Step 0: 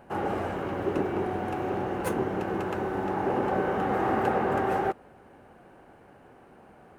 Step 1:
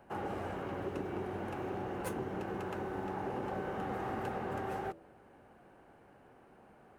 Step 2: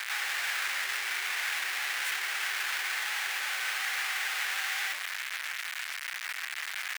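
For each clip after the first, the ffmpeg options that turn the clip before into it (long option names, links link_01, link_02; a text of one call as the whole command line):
ffmpeg -i in.wav -filter_complex "[0:a]bandreject=frequency=82.29:width_type=h:width=4,bandreject=frequency=164.58:width_type=h:width=4,bandreject=frequency=246.87:width_type=h:width=4,bandreject=frequency=329.16:width_type=h:width=4,bandreject=frequency=411.45:width_type=h:width=4,bandreject=frequency=493.74:width_type=h:width=4,bandreject=frequency=576.03:width_type=h:width=4,bandreject=frequency=658.32:width_type=h:width=4,bandreject=frequency=740.61:width_type=h:width=4,acrossover=split=160|3000[link_01][link_02][link_03];[link_02]acompressor=threshold=-29dB:ratio=6[link_04];[link_01][link_04][link_03]amix=inputs=3:normalize=0,volume=-6.5dB" out.wav
ffmpeg -i in.wav -filter_complex "[0:a]asplit=2[link_01][link_02];[link_02]highpass=frequency=720:poles=1,volume=33dB,asoftclip=type=tanh:threshold=-25dB[link_03];[link_01][link_03]amix=inputs=2:normalize=0,lowpass=frequency=4100:poles=1,volume=-6dB,acrusher=bits=3:dc=4:mix=0:aa=0.000001,highpass=frequency=1900:width_type=q:width=2.3,volume=4dB" out.wav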